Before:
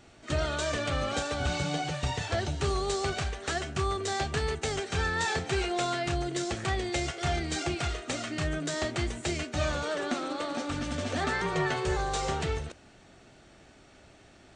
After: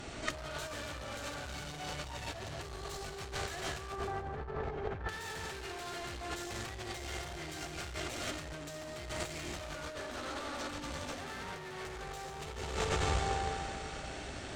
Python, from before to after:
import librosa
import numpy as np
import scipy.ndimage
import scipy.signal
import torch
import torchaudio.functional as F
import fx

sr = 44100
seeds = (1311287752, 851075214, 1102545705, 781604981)

y = fx.rev_plate(x, sr, seeds[0], rt60_s=3.0, hf_ratio=0.95, predelay_ms=0, drr_db=1.5)
y = fx.tube_stage(y, sr, drive_db=34.0, bias=0.75)
y = fx.lowpass(y, sr, hz=1100.0, slope=12, at=(3.92, 5.09))
y = fx.echo_feedback(y, sr, ms=148, feedback_pct=40, wet_db=-11)
y = fx.over_compress(y, sr, threshold_db=-43.0, ratio=-0.5)
y = fx.dynamic_eq(y, sr, hz=200.0, q=0.77, threshold_db=-54.0, ratio=4.0, max_db=-5)
y = F.gain(torch.from_numpy(y), 6.5).numpy()